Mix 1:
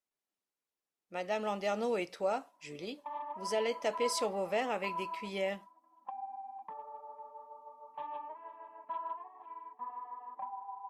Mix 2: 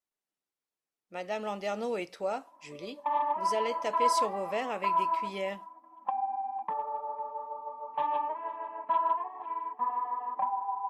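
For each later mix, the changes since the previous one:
background +10.0 dB; reverb: on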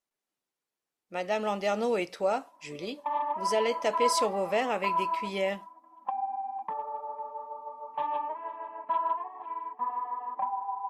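speech +5.0 dB; background: send -8.5 dB

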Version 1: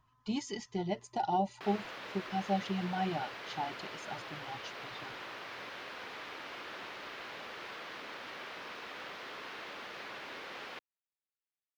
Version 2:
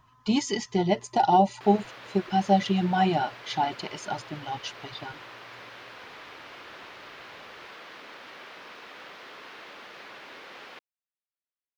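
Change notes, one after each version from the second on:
speech +11.5 dB; master: add low shelf 91 Hz -5.5 dB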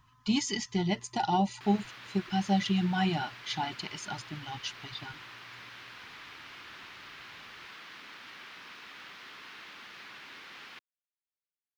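master: add bell 550 Hz -14 dB 1.4 oct

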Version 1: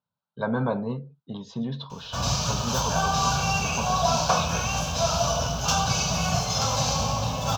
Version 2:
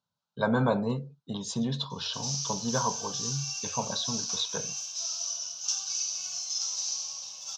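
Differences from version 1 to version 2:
speech: remove air absorption 240 m; background: add band-pass 5800 Hz, Q 4.1

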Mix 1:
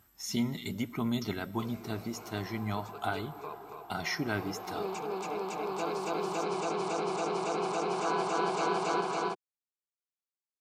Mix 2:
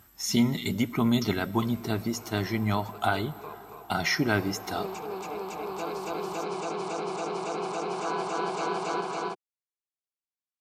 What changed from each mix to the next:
speech +7.5 dB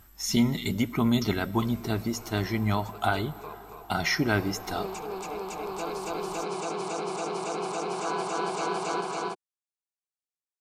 background: remove air absorption 54 m; master: remove HPF 86 Hz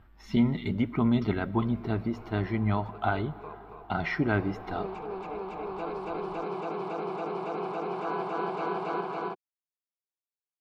master: add air absorption 420 m

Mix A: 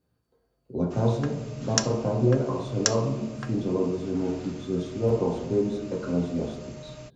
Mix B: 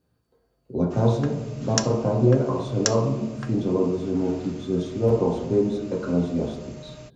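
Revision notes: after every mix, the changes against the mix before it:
speech +3.5 dB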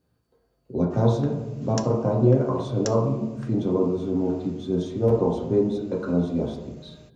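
background -10.0 dB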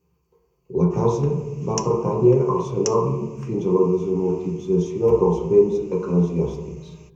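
master: add ripple EQ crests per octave 0.76, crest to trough 16 dB

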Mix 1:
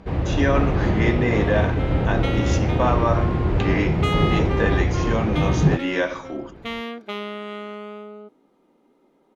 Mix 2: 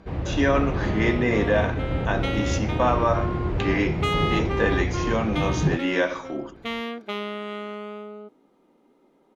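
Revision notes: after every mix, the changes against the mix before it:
first sound -5.5 dB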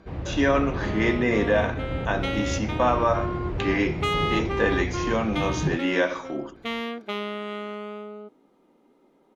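first sound -4.0 dB

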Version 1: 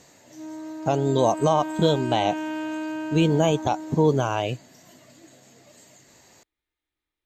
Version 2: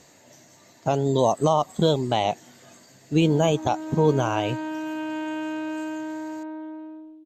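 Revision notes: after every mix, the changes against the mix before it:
background: entry +2.80 s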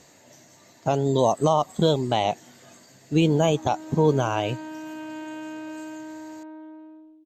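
background -6.0 dB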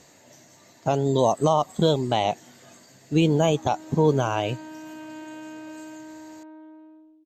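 background -3.5 dB

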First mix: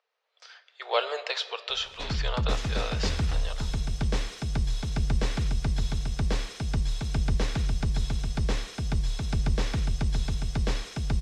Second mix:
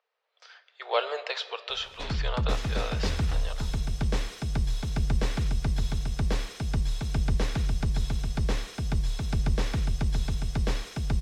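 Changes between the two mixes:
background: remove air absorption 51 m; master: add high shelf 5000 Hz -8 dB

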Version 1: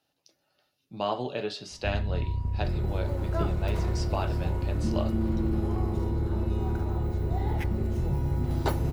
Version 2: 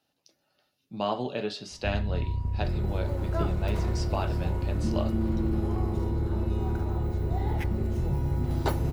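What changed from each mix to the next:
speech: add bell 220 Hz +5.5 dB 0.37 oct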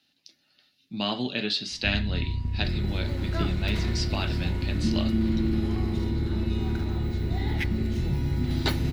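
master: add graphic EQ 250/500/1000/2000/4000 Hz +7/-6/-5/+8/+12 dB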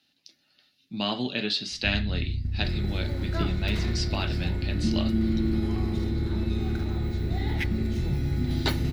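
first sound: add Gaussian blur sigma 24 samples

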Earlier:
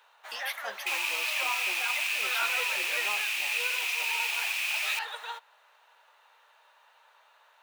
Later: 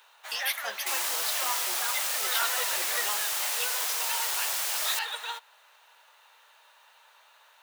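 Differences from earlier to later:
second sound: remove resonant high-pass 2500 Hz, resonance Q 11; master: add high shelf 3200 Hz +11 dB

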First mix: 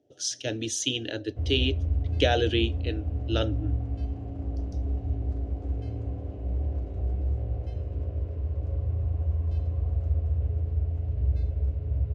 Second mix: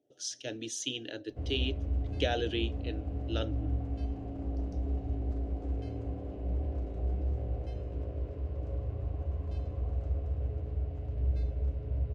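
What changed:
speech -7.5 dB; master: add bell 90 Hz -14.5 dB 0.5 oct

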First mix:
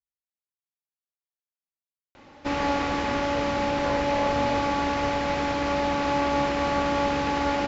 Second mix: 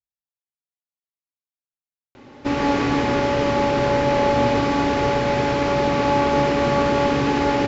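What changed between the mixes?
background: send +11.0 dB; master: add thirty-one-band EQ 125 Hz +12 dB, 250 Hz +8 dB, 400 Hz +10 dB

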